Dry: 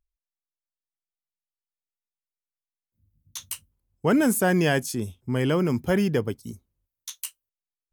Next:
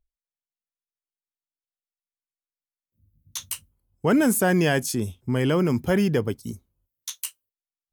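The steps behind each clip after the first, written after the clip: in parallel at -1.5 dB: peak limiter -21.5 dBFS, peak gain reduction 11.5 dB; on the sum: spectral noise reduction 15 dB; trim -1.5 dB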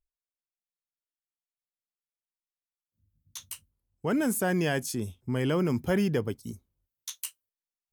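gain riding 2 s; trim -5 dB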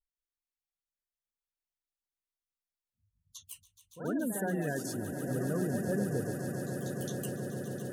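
spectral gate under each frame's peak -15 dB strong; ever faster or slower copies 181 ms, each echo +1 st, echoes 2, each echo -6 dB; echo with a slow build-up 141 ms, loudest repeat 8, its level -12.5 dB; trim -7 dB

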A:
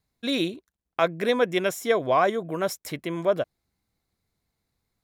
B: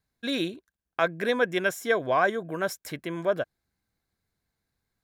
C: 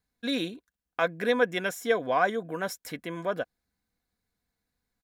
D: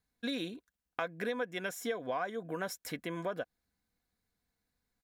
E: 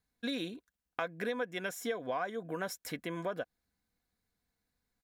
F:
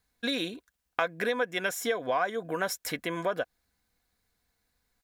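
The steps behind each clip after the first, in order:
peaking EQ 1.6 kHz +10.5 dB 0.2 oct; trim -3 dB
comb 4.1 ms, depth 42%; trim -2 dB
compression 6:1, threshold -31 dBFS, peak gain reduction 13 dB; trim -1.5 dB
no audible change
peaking EQ 190 Hz -6 dB 2.1 oct; trim +8.5 dB

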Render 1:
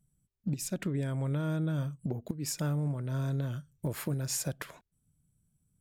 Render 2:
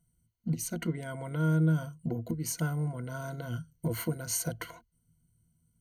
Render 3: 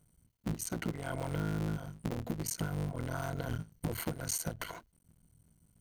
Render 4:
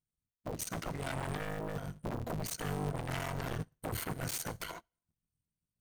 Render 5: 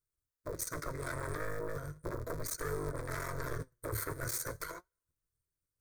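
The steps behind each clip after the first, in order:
rippled EQ curve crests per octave 1.9, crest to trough 17 dB; trim -1 dB
cycle switcher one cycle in 3, muted; compression 6:1, threshold -39 dBFS, peak gain reduction 15 dB; trim +6.5 dB
sine folder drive 14 dB, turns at -21 dBFS; reverberation, pre-delay 3 ms, DRR 14.5 dB; upward expansion 2.5:1, over -47 dBFS; trim -7.5 dB
flange 0.37 Hz, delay 2.1 ms, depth 7.9 ms, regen +66%; static phaser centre 780 Hz, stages 6; trim +7 dB

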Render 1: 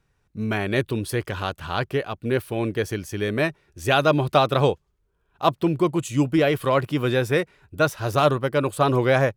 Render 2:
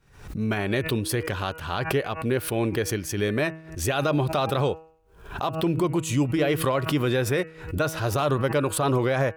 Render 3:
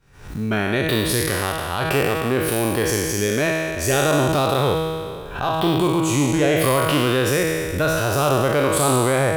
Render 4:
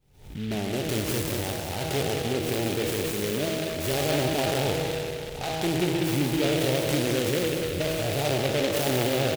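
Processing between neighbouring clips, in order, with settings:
peak limiter -14.5 dBFS, peak gain reduction 11 dB; de-hum 160.3 Hz, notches 18; swell ahead of each attack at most 99 dB/s
spectral sustain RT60 2.04 s; trim +1.5 dB
brick-wall FIR band-stop 950–2500 Hz; feedback delay 189 ms, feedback 58%, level -6 dB; delay time shaken by noise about 2.5 kHz, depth 0.12 ms; trim -7.5 dB

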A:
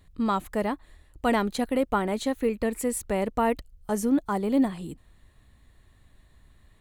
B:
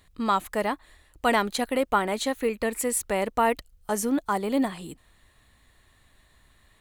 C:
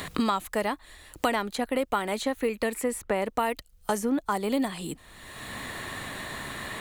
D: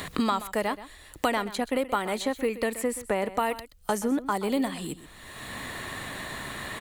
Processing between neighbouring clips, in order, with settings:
bass shelf 450 Hz -11 dB; trim +5.5 dB
three bands compressed up and down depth 100%; trim -2 dB
delay 128 ms -15 dB

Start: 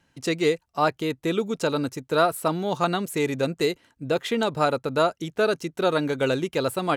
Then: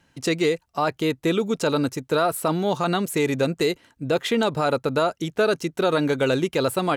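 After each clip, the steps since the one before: peak limiter -16 dBFS, peak gain reduction 7.5 dB; trim +4 dB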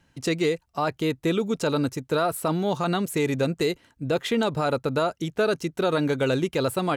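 bass shelf 130 Hz +7 dB; trim -3 dB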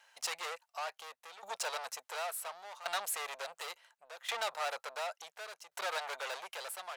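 saturation -31 dBFS, distortion -6 dB; inverse Chebyshev high-pass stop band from 320 Hz, stop band 40 dB; tremolo saw down 0.7 Hz, depth 85%; trim +3.5 dB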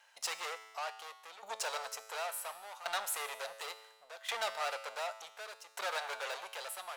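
feedback comb 110 Hz, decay 1.2 s, harmonics all, mix 70%; trim +9 dB

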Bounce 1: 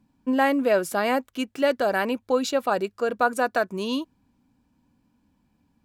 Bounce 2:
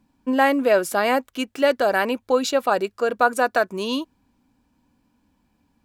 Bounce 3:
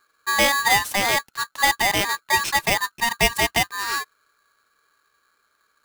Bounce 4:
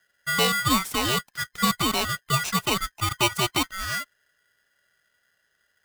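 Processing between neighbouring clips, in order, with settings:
peaking EQ 140 Hz -6 dB 1.7 oct; trim +4 dB
polarity switched at an audio rate 1.4 kHz; trim -1 dB
every band turned upside down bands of 1 kHz; trim -3.5 dB

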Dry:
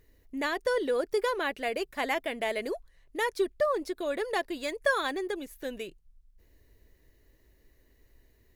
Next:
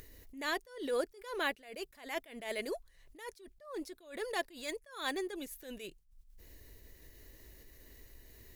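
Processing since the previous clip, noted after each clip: treble shelf 3.2 kHz +8.5 dB; upward compressor, threshold -40 dBFS; attacks held to a fixed rise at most 120 dB/s; trim -4 dB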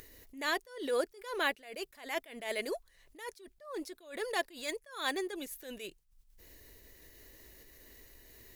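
bass shelf 200 Hz -8 dB; trim +3 dB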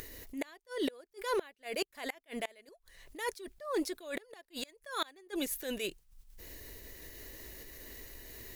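inverted gate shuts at -29 dBFS, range -30 dB; trim +7.5 dB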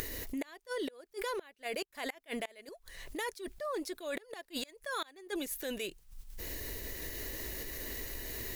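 compression 12:1, threshold -43 dBFS, peak gain reduction 16 dB; trim +8.5 dB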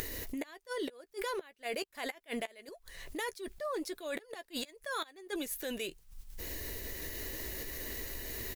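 doubling 13 ms -14 dB

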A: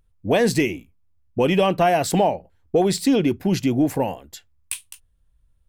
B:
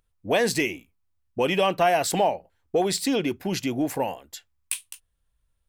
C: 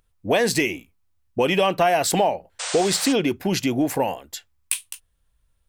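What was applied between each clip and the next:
bass shelf 370 Hz -11 dB
painted sound noise, 2.59–3.13 s, 460–9100 Hz -35 dBFS; compression 2:1, threshold -23 dBFS, peak gain reduction 4.5 dB; trim +5.5 dB

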